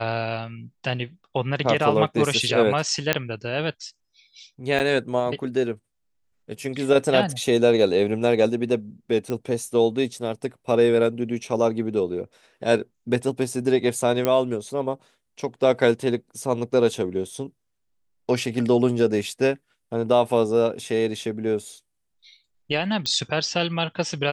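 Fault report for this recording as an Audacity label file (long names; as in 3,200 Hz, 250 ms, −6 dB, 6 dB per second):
3.130000	3.130000	click −4 dBFS
4.790000	4.800000	drop-out 8.7 ms
9.300000	9.300000	click −16 dBFS
14.250000	14.250000	click −8 dBFS
23.060000	23.060000	click −13 dBFS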